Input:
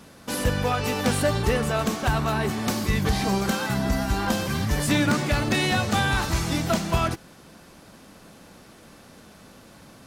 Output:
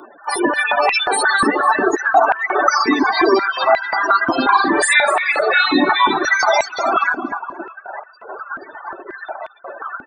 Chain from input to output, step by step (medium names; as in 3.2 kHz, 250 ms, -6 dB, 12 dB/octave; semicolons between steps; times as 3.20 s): level rider gain up to 9 dB; reverberation RT60 2.4 s, pre-delay 73 ms, DRR 14.5 dB; resampled via 22.05 kHz; loudest bins only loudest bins 32; 4.44–5.39 s: doubling 48 ms -3 dB; static phaser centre 1.2 kHz, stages 4; compression 3:1, threshold -21 dBFS, peak gain reduction 8.5 dB; feedback delay 245 ms, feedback 32%, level -11.5 dB; spectral gate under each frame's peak -15 dB weak; reverb removal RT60 1.5 s; loudness maximiser +32.5 dB; step-sequenced high-pass 5.6 Hz 260–2500 Hz; trim -9 dB